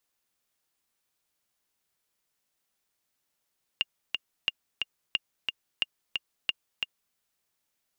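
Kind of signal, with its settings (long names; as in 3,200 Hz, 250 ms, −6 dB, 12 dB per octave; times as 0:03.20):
click track 179 BPM, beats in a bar 2, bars 5, 2,820 Hz, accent 3.5 dB −12 dBFS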